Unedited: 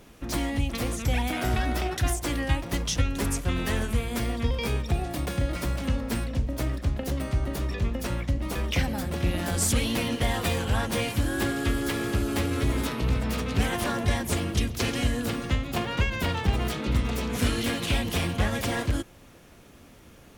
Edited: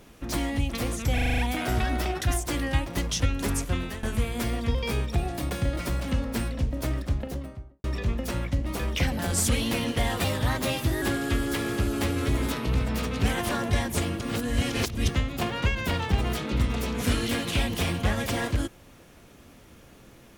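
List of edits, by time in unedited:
1.14 stutter 0.04 s, 7 plays
3.47–3.79 fade out, to -16.5 dB
6.76–7.6 studio fade out
8.95–9.43 cut
10.48–11.37 speed 114%
14.56–15.44 reverse

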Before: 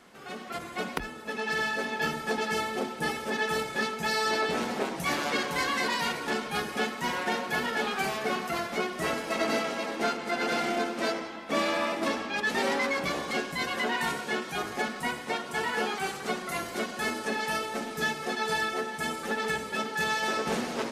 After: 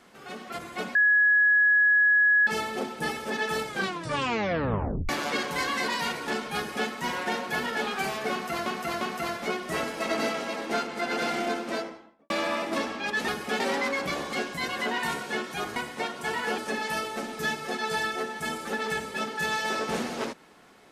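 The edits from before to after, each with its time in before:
0.95–2.47 bleep 1680 Hz -17 dBFS
3.67 tape stop 1.42 s
6.56–6.88 copy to 12.58
8.31–8.66 loop, 3 plays
10.88–11.6 studio fade out
14.74–15.06 cut
15.88–17.16 cut

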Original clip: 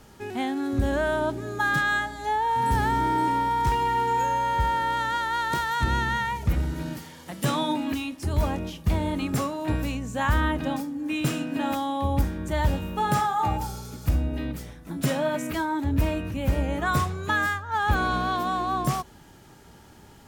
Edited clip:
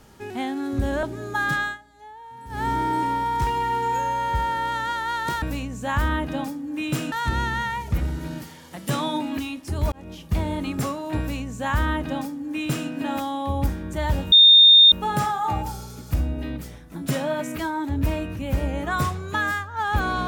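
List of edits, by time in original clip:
1.03–1.28 cut
1.85–2.92 dip -18 dB, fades 0.18 s
8.47–8.82 fade in
9.74–11.44 copy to 5.67
12.87 add tone 3650 Hz -8 dBFS 0.60 s

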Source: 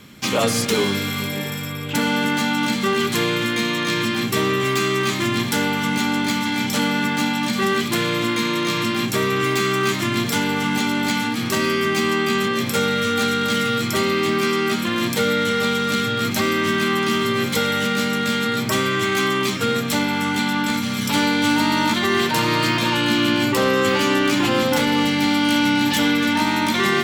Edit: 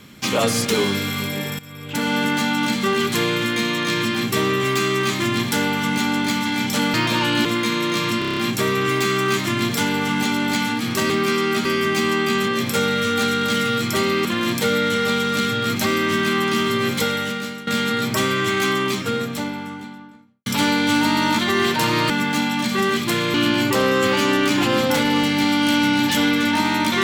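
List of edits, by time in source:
1.59–2.17 fade in, from -16 dB
6.94–8.18 swap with 22.65–23.16
8.92 stutter 0.03 s, 7 plays
14.25–14.8 move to 11.65
17.53–18.22 fade out, to -16 dB
19.16–21.01 studio fade out

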